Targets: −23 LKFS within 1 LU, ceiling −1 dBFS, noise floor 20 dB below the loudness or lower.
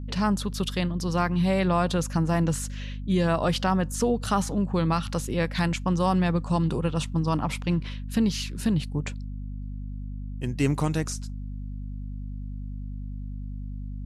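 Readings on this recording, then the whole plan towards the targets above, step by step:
mains hum 50 Hz; hum harmonics up to 250 Hz; level of the hum −32 dBFS; integrated loudness −26.0 LKFS; sample peak −12.0 dBFS; target loudness −23.0 LKFS
→ mains-hum notches 50/100/150/200/250 Hz
level +3 dB

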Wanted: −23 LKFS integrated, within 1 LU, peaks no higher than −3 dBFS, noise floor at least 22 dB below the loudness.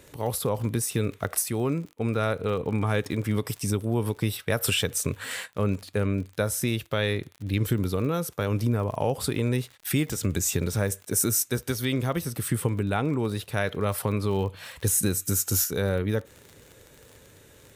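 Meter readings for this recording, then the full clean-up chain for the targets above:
crackle rate 44 per second; integrated loudness −27.0 LKFS; sample peak −10.5 dBFS; target loudness −23.0 LKFS
→ click removal
level +4 dB

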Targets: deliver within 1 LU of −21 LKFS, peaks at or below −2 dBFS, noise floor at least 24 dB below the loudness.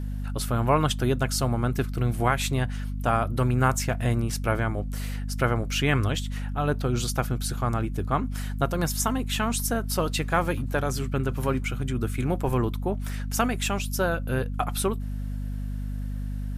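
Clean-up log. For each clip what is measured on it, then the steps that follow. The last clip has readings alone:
mains hum 50 Hz; hum harmonics up to 250 Hz; level of the hum −28 dBFS; integrated loudness −27.0 LKFS; sample peak −8.5 dBFS; target loudness −21.0 LKFS
→ mains-hum notches 50/100/150/200/250 Hz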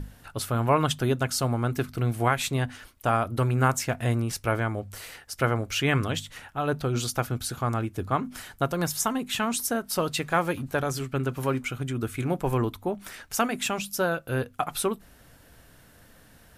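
mains hum none found; integrated loudness −27.5 LKFS; sample peak −9.5 dBFS; target loudness −21.0 LKFS
→ level +6.5 dB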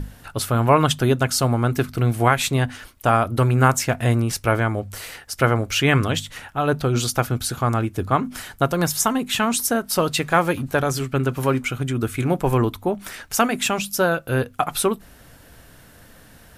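integrated loudness −21.0 LKFS; sample peak −3.0 dBFS; background noise floor −48 dBFS

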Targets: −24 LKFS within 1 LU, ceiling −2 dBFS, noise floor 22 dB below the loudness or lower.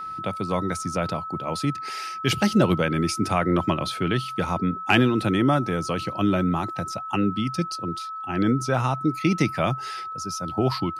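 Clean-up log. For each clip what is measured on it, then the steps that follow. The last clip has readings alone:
interfering tone 1,300 Hz; level of the tone −31 dBFS; integrated loudness −24.5 LKFS; sample peak −5.0 dBFS; target loudness −24.0 LKFS
→ notch filter 1,300 Hz, Q 30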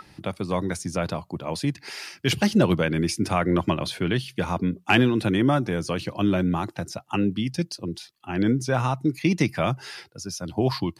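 interfering tone none found; integrated loudness −25.0 LKFS; sample peak −5.5 dBFS; target loudness −24.0 LKFS
→ level +1 dB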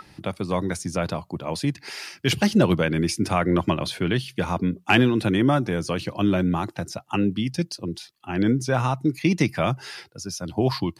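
integrated loudness −24.0 LKFS; sample peak −4.5 dBFS; background noise floor −56 dBFS

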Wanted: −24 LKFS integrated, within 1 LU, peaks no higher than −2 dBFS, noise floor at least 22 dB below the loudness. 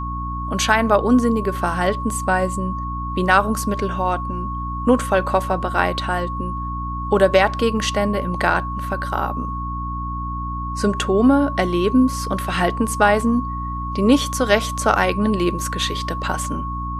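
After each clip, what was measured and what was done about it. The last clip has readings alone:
mains hum 60 Hz; hum harmonics up to 300 Hz; level of the hum −26 dBFS; interfering tone 1,100 Hz; level of the tone −27 dBFS; integrated loudness −20.0 LKFS; sample peak −1.5 dBFS; target loudness −24.0 LKFS
→ mains-hum notches 60/120/180/240/300 Hz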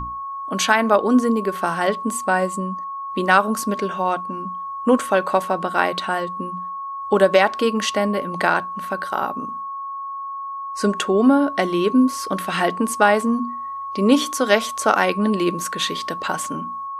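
mains hum none found; interfering tone 1,100 Hz; level of the tone −27 dBFS
→ notch filter 1,100 Hz, Q 30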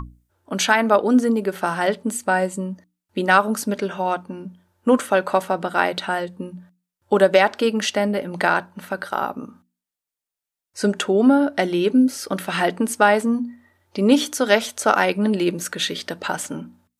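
interfering tone none found; integrated loudness −20.5 LKFS; sample peak −2.0 dBFS; target loudness −24.0 LKFS
→ level −3.5 dB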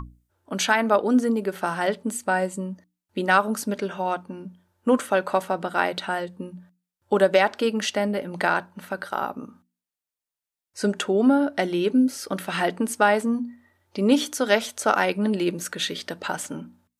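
integrated loudness −24.0 LKFS; sample peak −5.5 dBFS; background noise floor −90 dBFS

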